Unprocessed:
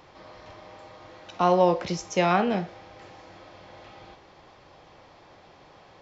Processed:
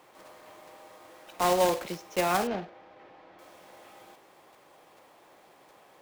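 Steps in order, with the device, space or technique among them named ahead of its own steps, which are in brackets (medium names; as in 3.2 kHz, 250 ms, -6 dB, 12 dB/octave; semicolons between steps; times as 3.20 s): early digital voice recorder (band-pass 240–3400 Hz; block-companded coder 3-bit); 2.47–3.39 s: distance through air 240 m; trim -4 dB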